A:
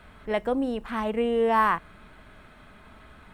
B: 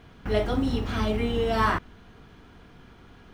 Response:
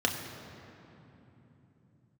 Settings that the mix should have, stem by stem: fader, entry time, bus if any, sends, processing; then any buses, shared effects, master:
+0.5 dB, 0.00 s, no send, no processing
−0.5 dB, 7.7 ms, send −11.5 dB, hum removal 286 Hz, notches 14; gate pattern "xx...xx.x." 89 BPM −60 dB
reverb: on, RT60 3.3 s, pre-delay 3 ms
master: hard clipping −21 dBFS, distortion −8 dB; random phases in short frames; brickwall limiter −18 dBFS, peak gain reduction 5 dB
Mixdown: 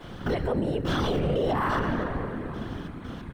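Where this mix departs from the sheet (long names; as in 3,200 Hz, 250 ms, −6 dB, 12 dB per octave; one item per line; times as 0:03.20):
stem B −0.5 dB → +7.0 dB
master: missing hard clipping −21 dBFS, distortion −8 dB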